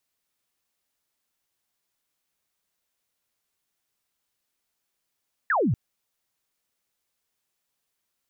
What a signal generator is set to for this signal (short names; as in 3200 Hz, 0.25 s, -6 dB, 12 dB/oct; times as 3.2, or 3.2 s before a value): laser zap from 1900 Hz, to 97 Hz, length 0.24 s sine, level -19.5 dB